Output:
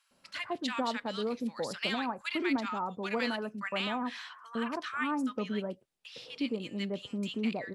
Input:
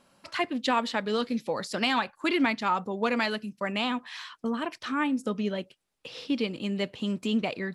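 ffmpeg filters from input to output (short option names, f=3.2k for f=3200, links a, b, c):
-filter_complex "[0:a]asettb=1/sr,asplit=3[a][b][c];[a]atrim=end=3.274[d];[b]atrim=start=3.27:end=5.6,asetpts=PTS-STARTPTS,afade=t=in:d=0.004:c=qsin,afade=t=out:st=2.326:d=0.004:c=qsin,equalizer=f=1.3k:t=o:w=1.4:g=6.5[e];[c]atrim=start=5.596[f];[d][e]acrossfade=d=0.004:c1=hsin:c2=qsin[g];[g][f]acrossfade=d=0.004:c1=qsin:c2=hsin,acrossover=split=1200[h][i];[h]adelay=110[j];[j][i]amix=inputs=2:normalize=0,volume=-5dB"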